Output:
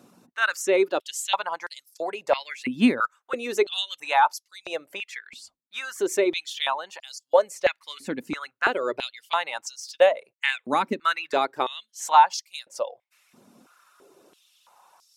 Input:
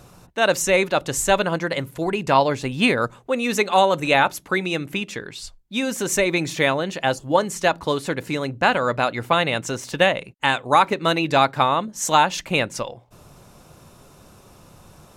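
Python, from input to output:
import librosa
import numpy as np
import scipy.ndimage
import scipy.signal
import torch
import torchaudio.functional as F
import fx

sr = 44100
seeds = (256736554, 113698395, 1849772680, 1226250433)

y = fx.dereverb_blind(x, sr, rt60_s=0.54)
y = fx.filter_held_highpass(y, sr, hz=3.0, low_hz=240.0, high_hz=5000.0)
y = F.gain(torch.from_numpy(y), -8.5).numpy()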